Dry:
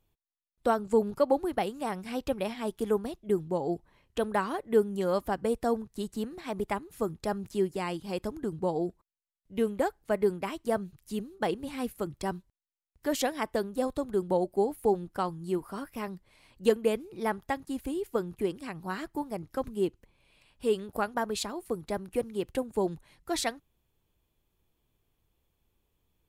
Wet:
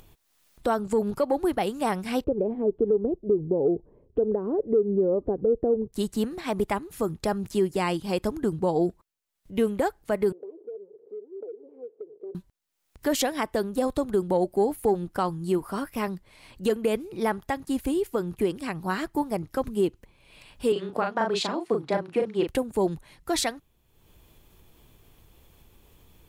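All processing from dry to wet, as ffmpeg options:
-filter_complex "[0:a]asettb=1/sr,asplit=3[a][b][c];[a]atrim=end=2.244[d];[b]atrim=start=2.24:end=5.93,asetpts=PTS-STARTPTS,afade=t=in:d=0.004:c=qsin,afade=t=out:st=3.686:d=0.004:c=qsin,acompressor=threshold=-33dB:ratio=3:attack=3.2:release=140:knee=1:detection=peak,lowpass=f=440:t=q:w=3.5[e];[c]atrim=start=5.926[f];[d][e]acrossfade=d=0.004:c1=hsin:c2=qsin[g];[g][f]acrossfade=d=0.004:c1=qsin:c2=hsin,asettb=1/sr,asplit=3[h][i][j];[h]atrim=end=10.324[k];[i]atrim=start=10.32:end=12.35,asetpts=PTS-STARTPTS,afade=t=in:d=0.004:c=qsin,afade=t=out:st=2.026:d=0.004:c=qsin,aeval=exprs='val(0)+0.5*0.0168*sgn(val(0))':c=same,asuperpass=centerf=430:order=4:qfactor=5.5,acompressor=threshold=-41dB:ratio=12:attack=3.2:release=140:knee=1:detection=peak[l];[j]atrim=start=12.346[m];[k][l]acrossfade=d=0.004:c1=hsin:c2=qsin[n];[n][m]acrossfade=d=0.004:c1=qsin:c2=hsin,asettb=1/sr,asplit=3[o][p][q];[o]atrim=end=20.724[r];[p]atrim=start=20.72:end=22.48,asetpts=PTS-STARTPTS,afade=t=in:d=0.004:c=qsin,afade=t=out:st=1.756:d=0.004:c=qsin,afreqshift=-15,highpass=210,lowpass=4.4k,asplit=2[s][t];[t]adelay=37,volume=-4.5dB[u];[s][u]amix=inputs=2:normalize=0,atrim=end_sample=77616[v];[q]atrim=start=22.476[w];[r][v]acrossfade=d=0.004:c1=hsin:c2=qsin[x];[x][w]acrossfade=d=0.004:c1=qsin:c2=hsin,acontrast=88,alimiter=limit=-14.5dB:level=0:latency=1:release=127,acompressor=mode=upward:threshold=-43dB:ratio=2.5"

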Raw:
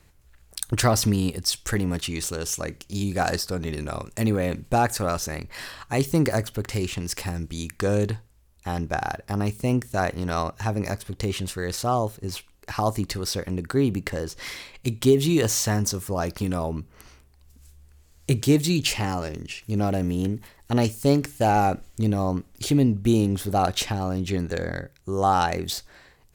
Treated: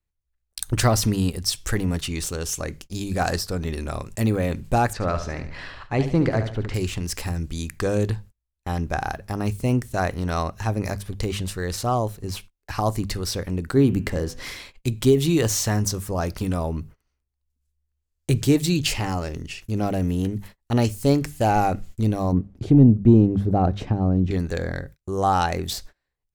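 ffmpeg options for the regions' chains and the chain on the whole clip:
-filter_complex "[0:a]asettb=1/sr,asplit=3[a][b][c];[a]atrim=end=4.934[d];[b]atrim=start=4.93:end=6.74,asetpts=PTS-STARTPTS,afade=t=in:d=0.004:c=qsin,afade=t=out:st=1.806:d=0.004:c=qsin,lowpass=3.4k,aecho=1:1:72|144|216|288:0.335|0.134|0.0536|0.0214,atrim=end_sample=79821[e];[c]atrim=start=6.736[f];[d][e]acrossfade=d=0.004:c1=hsin:c2=qsin[g];[g][f]acrossfade=d=0.004:c1=qsin:c2=hsin,asettb=1/sr,asplit=3[h][i][j];[h]atrim=end=13.714[k];[i]atrim=start=13.71:end=14.52,asetpts=PTS-STARTPTS,afade=t=in:d=0.004:c=qsin,afade=t=out:st=0.806:d=0.004:c=qsin,equalizer=f=220:t=o:w=2.8:g=4,bandreject=f=124.3:t=h:w=4,bandreject=f=248.6:t=h:w=4,bandreject=f=372.9:t=h:w=4,bandreject=f=497.2:t=h:w=4,bandreject=f=621.5:t=h:w=4,bandreject=f=745.8:t=h:w=4,bandreject=f=870.1:t=h:w=4,bandreject=f=994.4:t=h:w=4,bandreject=f=1.1187k:t=h:w=4,bandreject=f=1.243k:t=h:w=4,bandreject=f=1.3673k:t=h:w=4,bandreject=f=1.4916k:t=h:w=4,bandreject=f=1.6159k:t=h:w=4,bandreject=f=1.7402k:t=h:w=4,bandreject=f=1.8645k:t=h:w=4,bandreject=f=1.9888k:t=h:w=4,bandreject=f=2.1131k:t=h:w=4,bandreject=f=2.2374k:t=h:w=4,bandreject=f=2.3617k:t=h:w=4,bandreject=f=2.486k:t=h:w=4,bandreject=f=2.6103k:t=h:w=4,bandreject=f=2.7346k:t=h:w=4,bandreject=f=2.8589k:t=h:w=4,bandreject=f=2.9832k:t=h:w=4,bandreject=f=3.1075k:t=h:w=4,bandreject=f=3.2318k:t=h:w=4[l];[j]atrim=start=14.516[m];[k][l]acrossfade=d=0.004:c1=hsin:c2=qsin[n];[n][m]acrossfade=d=0.004:c1=qsin:c2=hsin,asettb=1/sr,asplit=3[o][p][q];[o]atrim=end=22.324[r];[p]atrim=start=22.32:end=24.31,asetpts=PTS-STARTPTS,afade=t=in:d=0.004:c=qsin,afade=t=out:st=1.986:d=0.004:c=qsin,bandpass=f=170:t=q:w=0.56,acontrast=73[s];[q]atrim=start=24.306[t];[r][s]acrossfade=d=0.004:c1=hsin:c2=qsin[u];[u][t]acrossfade=d=0.004:c1=qsin:c2=hsin,bandreject=f=50:t=h:w=6,bandreject=f=100:t=h:w=6,bandreject=f=150:t=h:w=6,bandreject=f=200:t=h:w=6,agate=range=-30dB:threshold=-43dB:ratio=16:detection=peak,lowshelf=f=77:g=10"

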